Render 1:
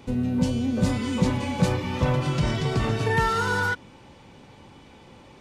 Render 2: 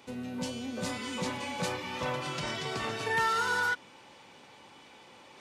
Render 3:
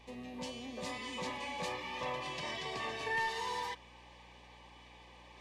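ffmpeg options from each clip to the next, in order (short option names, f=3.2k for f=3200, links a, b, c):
-af "highpass=f=830:p=1,areverse,acompressor=mode=upward:threshold=-46dB:ratio=2.5,areverse,volume=-2dB"
-filter_complex "[0:a]asuperstop=centerf=1400:order=20:qfactor=5.1,asplit=2[a][b];[b]highpass=f=720:p=1,volume=11dB,asoftclip=type=tanh:threshold=-17.5dB[c];[a][c]amix=inputs=2:normalize=0,lowpass=f=3.2k:p=1,volume=-6dB,aeval=exprs='val(0)+0.00224*(sin(2*PI*60*n/s)+sin(2*PI*2*60*n/s)/2+sin(2*PI*3*60*n/s)/3+sin(2*PI*4*60*n/s)/4+sin(2*PI*5*60*n/s)/5)':c=same,volume=-7.5dB"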